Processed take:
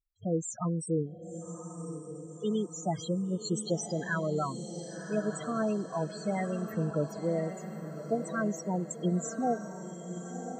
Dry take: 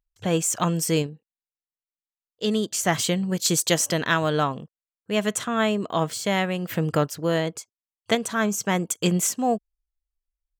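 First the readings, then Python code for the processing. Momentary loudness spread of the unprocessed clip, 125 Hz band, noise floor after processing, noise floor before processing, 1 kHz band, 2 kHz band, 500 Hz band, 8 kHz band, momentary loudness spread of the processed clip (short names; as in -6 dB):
5 LU, -6.0 dB, -46 dBFS, under -85 dBFS, -9.5 dB, -12.5 dB, -7.0 dB, -14.5 dB, 10 LU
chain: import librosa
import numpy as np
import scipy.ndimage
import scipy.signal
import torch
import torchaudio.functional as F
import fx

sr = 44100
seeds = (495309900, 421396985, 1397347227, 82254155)

y = fx.spec_topn(x, sr, count=8)
y = fx.echo_diffused(y, sr, ms=1087, feedback_pct=52, wet_db=-9)
y = F.gain(torch.from_numpy(y), -6.5).numpy()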